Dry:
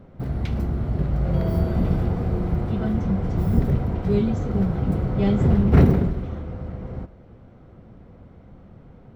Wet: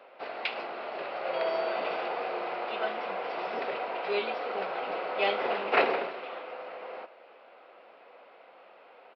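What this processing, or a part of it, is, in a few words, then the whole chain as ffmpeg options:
musical greeting card: -af "aresample=11025,aresample=44100,highpass=f=560:w=0.5412,highpass=f=560:w=1.3066,equalizer=f=2.6k:t=o:w=0.34:g=10.5,volume=5dB"

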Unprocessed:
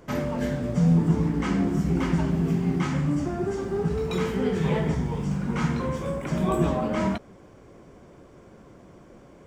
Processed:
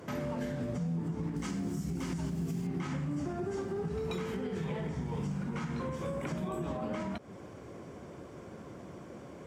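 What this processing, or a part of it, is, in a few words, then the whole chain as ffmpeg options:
podcast mastering chain: -filter_complex "[0:a]asettb=1/sr,asplit=3[a][b][c];[a]atrim=end=1.364[d];[b]atrim=start=1.36:end=2.67,asetpts=PTS-STARTPTS,afade=t=in:d=0.004:c=qsin,afade=t=out:st=1.306:d=0.004:c=qsin,bass=f=250:g=5,treble=f=4k:g=14[e];[c]atrim=start=2.666[f];[d][e]acrossfade=d=0.004:c1=hsin:c2=qsin[g];[g][f]acrossfade=d=0.004:c1=qsin:c2=hsin,highpass=f=68:w=0.5412,highpass=f=68:w=1.3066,acompressor=threshold=-30dB:ratio=2.5,alimiter=level_in=6dB:limit=-24dB:level=0:latency=1:release=298,volume=-6dB,volume=3dB" -ar 48000 -c:a libmp3lame -b:a 96k

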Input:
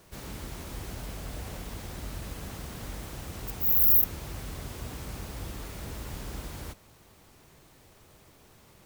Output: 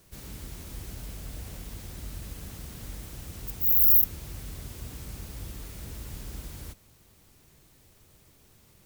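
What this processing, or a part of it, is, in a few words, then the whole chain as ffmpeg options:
smiley-face EQ: -af "lowshelf=f=130:g=4,equalizer=f=860:t=o:w=2:g=-5,highshelf=f=6.5k:g=5.5,volume=-3.5dB"

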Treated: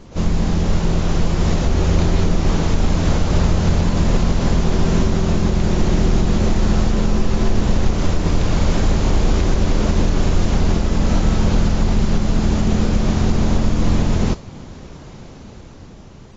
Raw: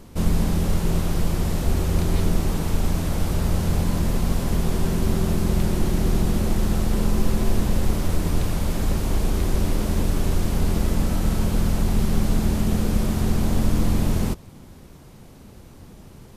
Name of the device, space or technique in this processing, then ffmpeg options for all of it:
low-bitrate web radio: -af "dynaudnorm=f=190:g=13:m=9dB,alimiter=limit=-9.5dB:level=0:latency=1:release=234,volume=3.5dB" -ar 16000 -c:a aac -b:a 24k

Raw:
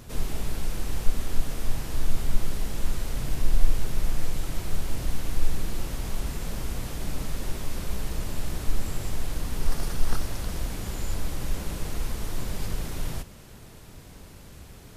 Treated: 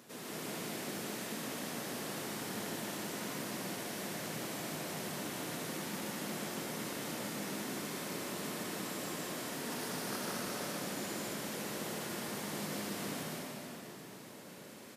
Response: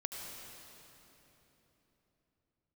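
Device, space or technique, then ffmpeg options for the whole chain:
stadium PA: -filter_complex "[0:a]highpass=f=190:w=0.5412,highpass=f=190:w=1.3066,equalizer=f=1.8k:t=o:w=0.32:g=3,aecho=1:1:151.6|215.7:0.794|0.631[a];[1:a]atrim=start_sample=2205[b];[a][b]afir=irnorm=-1:irlink=0,volume=-4.5dB"

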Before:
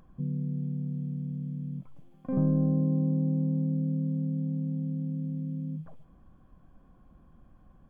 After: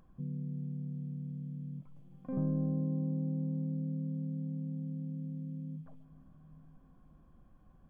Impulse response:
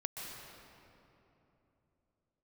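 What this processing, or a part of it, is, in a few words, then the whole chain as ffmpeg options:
ducked reverb: -filter_complex "[0:a]asplit=3[a][b][c];[1:a]atrim=start_sample=2205[d];[b][d]afir=irnorm=-1:irlink=0[e];[c]apad=whole_len=348255[f];[e][f]sidechaincompress=threshold=-45dB:ratio=8:attack=16:release=552,volume=-7.5dB[g];[a][g]amix=inputs=2:normalize=0,volume=-7.5dB"

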